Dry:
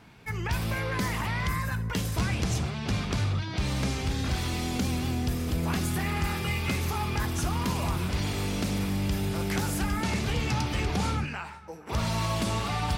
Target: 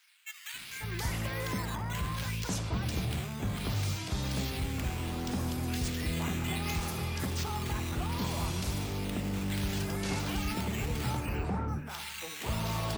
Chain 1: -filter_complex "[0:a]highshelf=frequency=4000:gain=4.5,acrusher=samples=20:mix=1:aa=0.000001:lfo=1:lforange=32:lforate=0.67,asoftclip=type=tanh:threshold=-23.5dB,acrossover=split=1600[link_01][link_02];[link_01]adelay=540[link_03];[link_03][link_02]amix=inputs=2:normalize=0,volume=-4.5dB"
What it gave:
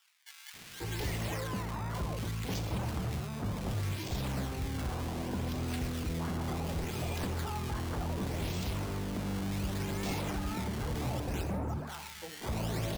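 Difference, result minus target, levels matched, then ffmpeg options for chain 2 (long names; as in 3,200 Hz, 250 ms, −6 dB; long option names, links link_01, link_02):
soft clipping: distortion +19 dB; sample-and-hold swept by an LFO: distortion +5 dB
-filter_complex "[0:a]highshelf=frequency=4000:gain=4.5,acrusher=samples=5:mix=1:aa=0.000001:lfo=1:lforange=8:lforate=0.67,asoftclip=type=tanh:threshold=-12.5dB,acrossover=split=1600[link_01][link_02];[link_01]adelay=540[link_03];[link_03][link_02]amix=inputs=2:normalize=0,volume=-4.5dB"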